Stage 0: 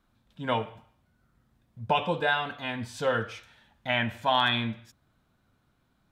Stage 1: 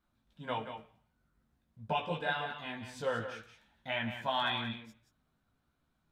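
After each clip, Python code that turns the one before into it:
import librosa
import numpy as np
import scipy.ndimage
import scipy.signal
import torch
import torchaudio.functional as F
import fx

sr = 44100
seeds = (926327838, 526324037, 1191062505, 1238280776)

y = x + 10.0 ** (-9.0 / 20.0) * np.pad(x, (int(179 * sr / 1000.0), 0))[:len(x)]
y = fx.chorus_voices(y, sr, voices=6, hz=1.1, base_ms=16, depth_ms=3.6, mix_pct=40)
y = y * 10.0 ** (-5.5 / 20.0)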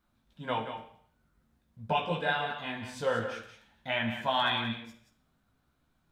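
y = fx.rev_schroeder(x, sr, rt60_s=0.59, comb_ms=31, drr_db=10.5)
y = y * 10.0 ** (4.0 / 20.0)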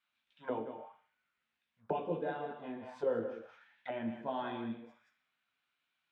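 y = fx.auto_wah(x, sr, base_hz=350.0, top_hz=2700.0, q=2.4, full_db=-33.0, direction='down')
y = y * 10.0 ** (4.0 / 20.0)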